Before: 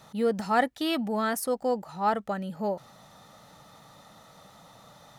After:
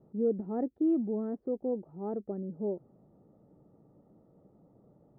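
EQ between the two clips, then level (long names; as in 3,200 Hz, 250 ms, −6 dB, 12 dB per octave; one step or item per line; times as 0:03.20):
low-pass with resonance 370 Hz, resonance Q 3.8
high-frequency loss of the air 220 metres
−6.0 dB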